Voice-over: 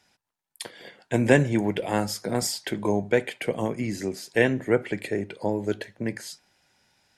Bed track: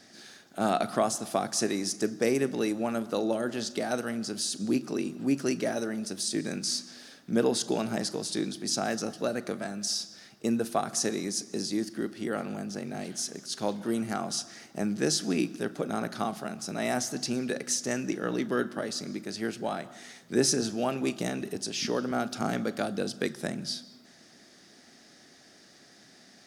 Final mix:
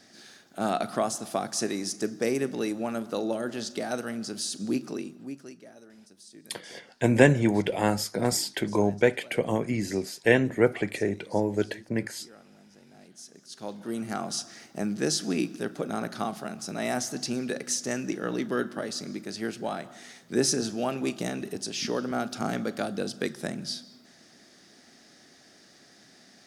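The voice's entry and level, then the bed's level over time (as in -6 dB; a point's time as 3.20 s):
5.90 s, +0.5 dB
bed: 4.88 s -1 dB
5.63 s -20 dB
12.77 s -20 dB
14.17 s 0 dB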